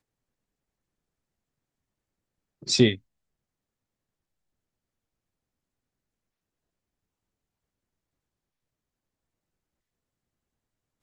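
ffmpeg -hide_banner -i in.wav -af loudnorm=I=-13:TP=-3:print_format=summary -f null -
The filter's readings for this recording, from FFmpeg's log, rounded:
Input Integrated:    -22.6 LUFS
Input True Peak:      -5.5 dBTP
Input LRA:             0.0 LU
Input Threshold:     -34.0 LUFS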